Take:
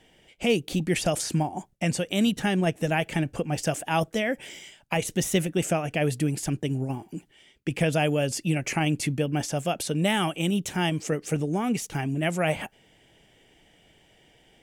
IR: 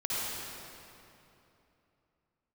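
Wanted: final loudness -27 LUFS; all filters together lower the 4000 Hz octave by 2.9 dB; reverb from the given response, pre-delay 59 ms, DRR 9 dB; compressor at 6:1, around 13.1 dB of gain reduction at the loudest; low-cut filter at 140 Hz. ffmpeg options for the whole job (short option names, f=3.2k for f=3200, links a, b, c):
-filter_complex "[0:a]highpass=140,equalizer=f=4k:t=o:g=-4.5,acompressor=threshold=-34dB:ratio=6,asplit=2[a][b];[1:a]atrim=start_sample=2205,adelay=59[c];[b][c]afir=irnorm=-1:irlink=0,volume=-16.5dB[d];[a][d]amix=inputs=2:normalize=0,volume=11dB"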